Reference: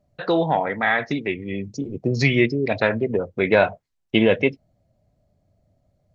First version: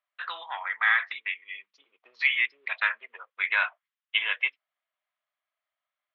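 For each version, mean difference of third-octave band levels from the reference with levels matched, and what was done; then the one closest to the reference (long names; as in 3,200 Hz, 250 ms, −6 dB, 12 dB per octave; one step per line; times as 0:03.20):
14.0 dB: Chebyshev band-pass filter 1,100–3,400 Hz, order 3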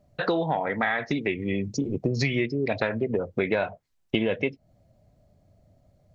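2.5 dB: downward compressor 6 to 1, threshold −27 dBFS, peak gain reduction 15 dB
level +4.5 dB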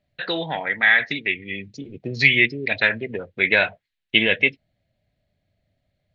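4.5 dB: flat-topped bell 2,600 Hz +15 dB
level −7.5 dB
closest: second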